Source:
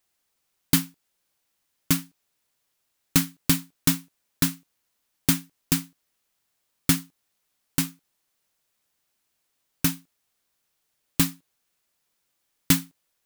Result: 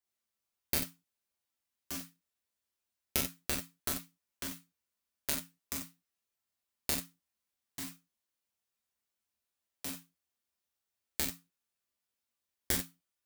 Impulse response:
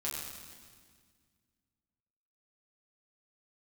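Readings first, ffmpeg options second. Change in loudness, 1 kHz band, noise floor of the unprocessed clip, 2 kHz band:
-11.5 dB, -9.0 dB, -76 dBFS, -10.0 dB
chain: -filter_complex "[0:a]aeval=exprs='0.841*(cos(1*acos(clip(val(0)/0.841,-1,1)))-cos(1*PI/2))+0.335*(cos(3*acos(clip(val(0)/0.841,-1,1)))-cos(3*PI/2))':c=same[a];[1:a]atrim=start_sample=2205,atrim=end_sample=4410[b];[a][b]afir=irnorm=-1:irlink=0"

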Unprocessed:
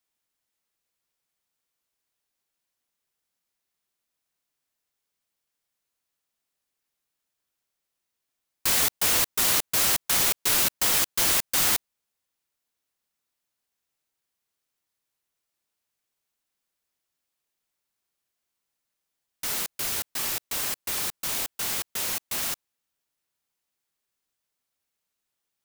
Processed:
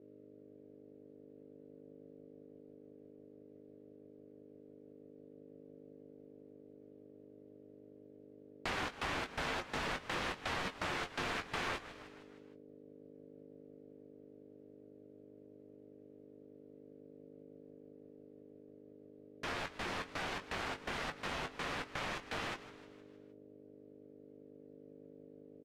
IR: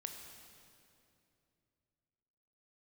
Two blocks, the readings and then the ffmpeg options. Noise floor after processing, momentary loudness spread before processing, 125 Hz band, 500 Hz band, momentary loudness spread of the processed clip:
-58 dBFS, 7 LU, -4.5 dB, -3.5 dB, 20 LU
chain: -filter_complex "[0:a]aeval=exprs='val(0)+0.00112*(sin(2*PI*50*n/s)+sin(2*PI*2*50*n/s)/2+sin(2*PI*3*50*n/s)/3+sin(2*PI*4*50*n/s)/4+sin(2*PI*5*50*n/s)/5)':c=same,asplit=2[a][b];[b]alimiter=limit=-17.5dB:level=0:latency=1,volume=-1dB[c];[a][c]amix=inputs=2:normalize=0,flanger=delay=8.5:depth=2.8:regen=52:speed=0.13:shape=sinusoidal,asplit=2[d][e];[e]adelay=20,volume=-7.5dB[f];[d][f]amix=inputs=2:normalize=0,asplit=2[g][h];[h]asplit=5[i][j][k][l][m];[i]adelay=155,afreqshift=78,volume=-19dB[n];[j]adelay=310,afreqshift=156,volume=-24.2dB[o];[k]adelay=465,afreqshift=234,volume=-29.4dB[p];[l]adelay=620,afreqshift=312,volume=-34.6dB[q];[m]adelay=775,afreqshift=390,volume=-39.8dB[r];[n][o][p][q][r]amix=inputs=5:normalize=0[s];[g][s]amix=inputs=2:normalize=0,aeval=exprs='val(0)*sin(2*PI*360*n/s)':c=same,lowpass=2.1k,acompressor=threshold=-40dB:ratio=2.5,volume=3dB"

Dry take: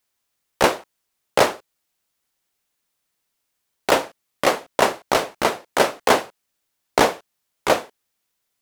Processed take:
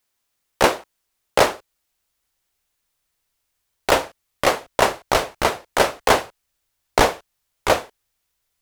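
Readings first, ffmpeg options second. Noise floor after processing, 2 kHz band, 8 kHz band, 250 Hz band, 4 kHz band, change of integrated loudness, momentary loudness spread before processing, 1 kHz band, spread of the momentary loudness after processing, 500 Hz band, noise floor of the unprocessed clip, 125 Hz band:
-75 dBFS, +1.0 dB, +1.0 dB, -1.0 dB, +1.0 dB, +0.5 dB, 12 LU, +0.5 dB, 12 LU, 0.0 dB, -76 dBFS, +3.5 dB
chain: -af "asubboost=boost=5.5:cutoff=89,volume=1dB"

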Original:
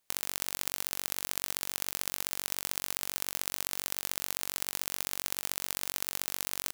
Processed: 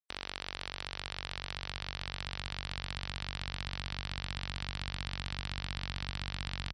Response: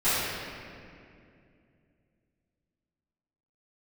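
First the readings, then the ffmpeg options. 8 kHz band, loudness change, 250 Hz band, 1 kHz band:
-21.0 dB, -7.0 dB, +2.0 dB, -1.0 dB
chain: -af "highpass=45,asubboost=boost=9.5:cutoff=100,lowpass=f=4.7k:w=0.5412,lowpass=f=4.7k:w=1.3066,asoftclip=type=tanh:threshold=-25.5dB,afftfilt=real='re*gte(hypot(re,im),0.00141)':imag='im*gte(hypot(re,im),0.00141)':win_size=1024:overlap=0.75,volume=5.5dB"

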